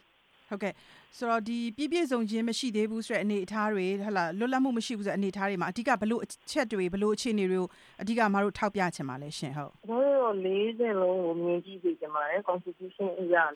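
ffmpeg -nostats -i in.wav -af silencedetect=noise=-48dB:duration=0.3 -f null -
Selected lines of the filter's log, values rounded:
silence_start: 0.00
silence_end: 0.51 | silence_duration: 0.51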